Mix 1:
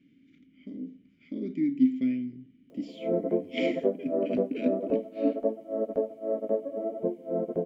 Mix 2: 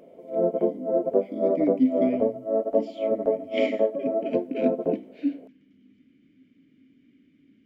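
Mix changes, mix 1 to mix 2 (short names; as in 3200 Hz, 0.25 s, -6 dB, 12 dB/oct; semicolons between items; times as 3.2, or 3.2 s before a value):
background: entry -2.70 s; master: add bell 830 Hz +8 dB 1.7 oct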